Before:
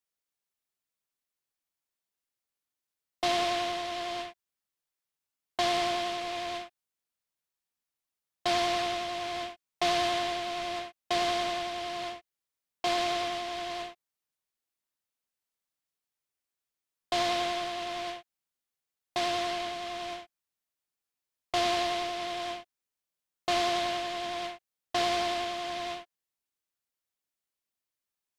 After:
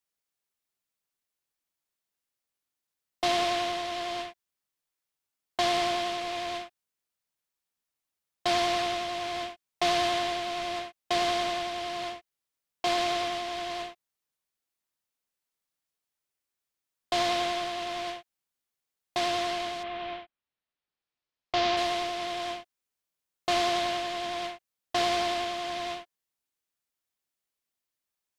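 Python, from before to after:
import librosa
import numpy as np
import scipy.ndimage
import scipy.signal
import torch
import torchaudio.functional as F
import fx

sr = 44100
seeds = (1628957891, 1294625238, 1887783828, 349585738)

y = fx.lowpass(x, sr, hz=fx.line((19.82, 3200.0), (21.76, 5900.0)), slope=24, at=(19.82, 21.76), fade=0.02)
y = y * librosa.db_to_amplitude(1.5)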